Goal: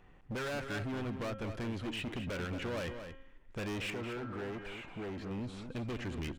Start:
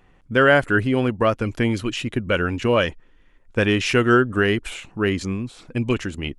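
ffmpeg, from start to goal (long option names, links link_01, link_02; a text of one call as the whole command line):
ffmpeg -i in.wav -filter_complex "[0:a]acrossover=split=4200[link_01][link_02];[link_02]acompressor=threshold=-47dB:ratio=4:attack=1:release=60[link_03];[link_01][link_03]amix=inputs=2:normalize=0,highshelf=frequency=4300:gain=-7,bandreject=frequency=268.3:width_type=h:width=4,bandreject=frequency=536.6:width_type=h:width=4,bandreject=frequency=804.9:width_type=h:width=4,bandreject=frequency=1073.2:width_type=h:width=4,bandreject=frequency=1341.5:width_type=h:width=4,bandreject=frequency=1609.8:width_type=h:width=4,bandreject=frequency=1878.1:width_type=h:width=4,bandreject=frequency=2146.4:width_type=h:width=4,bandreject=frequency=2414.7:width_type=h:width=4,bandreject=frequency=2683:width_type=h:width=4,bandreject=frequency=2951.3:width_type=h:width=4,bandreject=frequency=3219.6:width_type=h:width=4,bandreject=frequency=3487.9:width_type=h:width=4,bandreject=frequency=3756.2:width_type=h:width=4,acompressor=threshold=-28dB:ratio=2,volume=32dB,asoftclip=hard,volume=-32dB,asettb=1/sr,asplit=3[link_04][link_05][link_06];[link_04]atrim=end=3.904[link_07];[link_05]atrim=start=3.9:end=5.31,asetpts=PTS-STARTPTS,afade=type=in:duration=0.004:curve=qsin,afade=type=out:start_time=1.406:duration=0.004:curve=qsin,asplit=2[link_08][link_09];[link_09]highpass=frequency=720:poles=1,volume=15dB,asoftclip=type=tanh:threshold=-31.5dB[link_10];[link_08][link_10]amix=inputs=2:normalize=0,lowpass=frequency=1100:poles=1,volume=-6dB[link_11];[link_06]atrim=start=5.306[link_12];[link_07][link_11]acrossfade=duration=0.004:curve1=hsin:curve2=qsin[link_13];[link_13][link_12]acrossfade=duration=0.004:curve1=qsin:curve2=hsin,asplit=2[link_14][link_15];[link_15]adelay=227.4,volume=-8dB,highshelf=frequency=4000:gain=-5.12[link_16];[link_14][link_16]amix=inputs=2:normalize=0,volume=-4dB" out.wav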